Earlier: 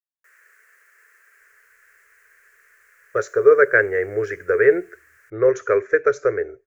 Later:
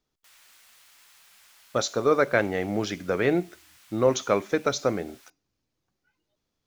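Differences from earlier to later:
speech: entry −1.40 s
master: remove drawn EQ curve 110 Hz 0 dB, 240 Hz −25 dB, 420 Hz +13 dB, 820 Hz −14 dB, 1,700 Hz +14 dB, 3,500 Hz −23 dB, 7,100 Hz −6 dB, 11,000 Hz −9 dB, 16,000 Hz −5 dB

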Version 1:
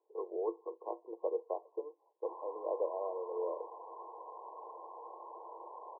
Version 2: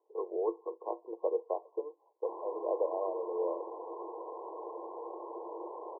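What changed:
speech +3.5 dB
background: remove high-pass filter 860 Hz 12 dB per octave

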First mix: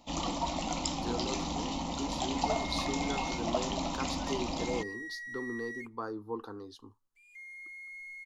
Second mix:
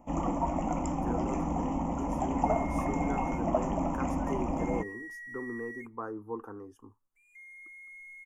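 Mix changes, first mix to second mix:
first sound: add tilt shelving filter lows +5.5 dB, about 1,500 Hz
master: add Butterworth band-reject 4,100 Hz, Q 0.79

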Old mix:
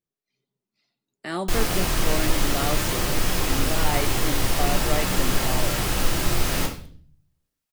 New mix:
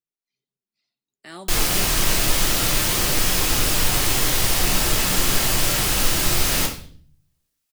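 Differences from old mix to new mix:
speech −11.0 dB
master: add high-shelf EQ 2,100 Hz +8.5 dB

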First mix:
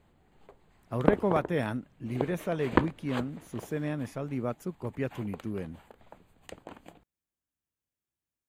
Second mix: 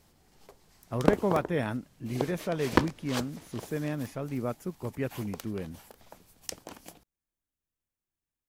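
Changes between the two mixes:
speech: remove high-pass filter 59 Hz
background: remove moving average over 8 samples

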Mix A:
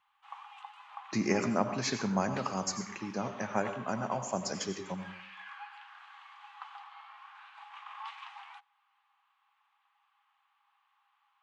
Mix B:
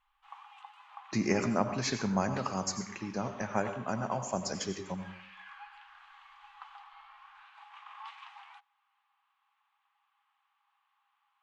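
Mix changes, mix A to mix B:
background −3.0 dB
master: remove high-pass filter 120 Hz 12 dB per octave

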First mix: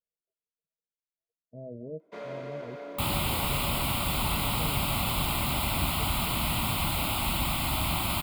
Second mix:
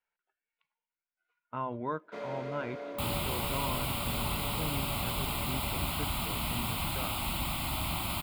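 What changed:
speech: remove Chebyshev low-pass with heavy ripple 670 Hz, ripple 6 dB
second sound −5.0 dB

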